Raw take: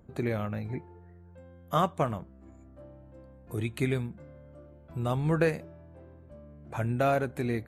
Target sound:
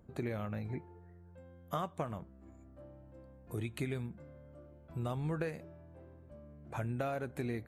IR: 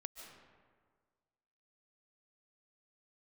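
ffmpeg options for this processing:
-af "acompressor=threshold=-29dB:ratio=6,volume=-4dB"

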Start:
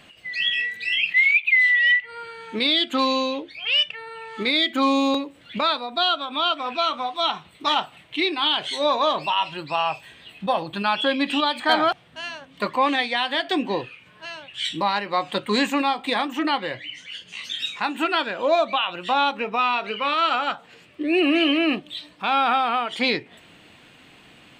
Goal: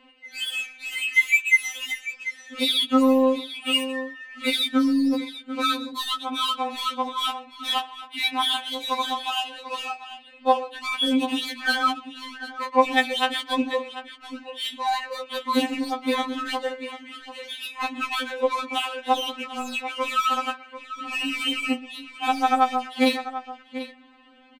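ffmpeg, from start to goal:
ffmpeg -i in.wav -af "aecho=1:1:124|741:0.112|0.237,adynamicsmooth=sensitivity=4:basefreq=2500,afftfilt=real='re*3.46*eq(mod(b,12),0)':imag='im*3.46*eq(mod(b,12),0)':win_size=2048:overlap=0.75" out.wav

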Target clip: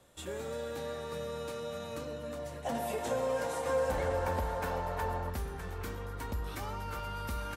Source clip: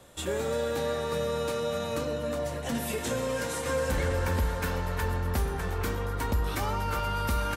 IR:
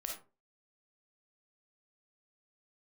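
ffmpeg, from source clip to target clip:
-filter_complex "[0:a]asettb=1/sr,asplit=3[link_01][link_02][link_03];[link_01]atrim=end=2.654[link_04];[link_02]atrim=start=2.65:end=5.3,asetpts=PTS-STARTPTS,afade=type=in:duration=0.004:curve=qsin,afade=type=out:start_time=2.646:duration=0.004:curve=qsin,equalizer=frequency=720:width=1.2:gain=14[link_05];[link_03]atrim=start=5.296[link_06];[link_04][link_05]acrossfade=duration=0.004:curve1=hsin:curve2=qsin[link_07];[link_07][link_06]acrossfade=duration=0.004:curve1=qsin:curve2=hsin,volume=-9dB"

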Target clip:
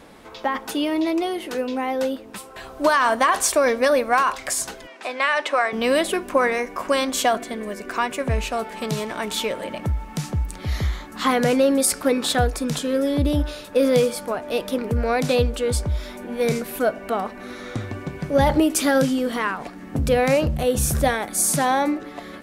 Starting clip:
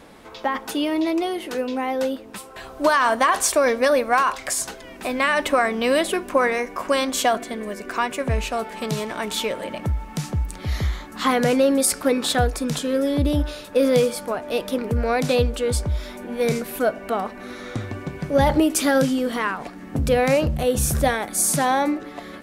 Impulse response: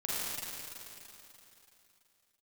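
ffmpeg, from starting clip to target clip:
-filter_complex "[0:a]asettb=1/sr,asplit=3[link_01][link_02][link_03];[link_01]atrim=end=4.874[link_04];[link_02]atrim=start=4.87:end=5.73,asetpts=PTS-STARTPTS,afade=type=in:duration=0.004:curve=qsin,afade=type=out:start_time=0.856:duration=0.004:curve=qsin,highpass=530,lowpass=6200[link_05];[link_03]atrim=start=5.726[link_06];[link_04][link_05]acrossfade=duration=0.004:curve1=hsin:curve2=qsin[link_07];[link_07][link_06]acrossfade=duration=0.004:curve1=qsin:curve2=hsin"

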